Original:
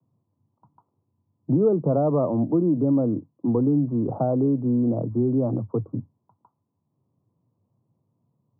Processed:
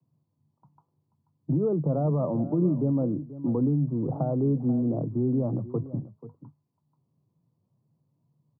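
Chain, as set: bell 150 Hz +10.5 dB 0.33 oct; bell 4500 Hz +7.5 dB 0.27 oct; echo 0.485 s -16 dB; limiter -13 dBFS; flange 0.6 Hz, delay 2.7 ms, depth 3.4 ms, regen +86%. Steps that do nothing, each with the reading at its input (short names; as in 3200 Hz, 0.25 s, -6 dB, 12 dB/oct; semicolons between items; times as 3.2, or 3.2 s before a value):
bell 4500 Hz: input band ends at 810 Hz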